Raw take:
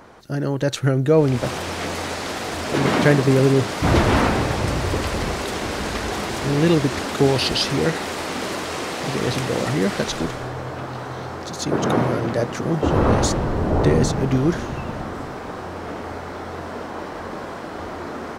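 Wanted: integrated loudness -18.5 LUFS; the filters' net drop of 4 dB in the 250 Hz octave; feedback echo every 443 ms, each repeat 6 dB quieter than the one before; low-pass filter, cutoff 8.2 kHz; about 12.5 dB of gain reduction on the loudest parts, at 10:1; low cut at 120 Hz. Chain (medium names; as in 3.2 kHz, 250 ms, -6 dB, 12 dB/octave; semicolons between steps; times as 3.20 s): high-pass 120 Hz; low-pass 8.2 kHz; peaking EQ 250 Hz -5 dB; compression 10:1, threshold -25 dBFS; feedback delay 443 ms, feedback 50%, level -6 dB; trim +10 dB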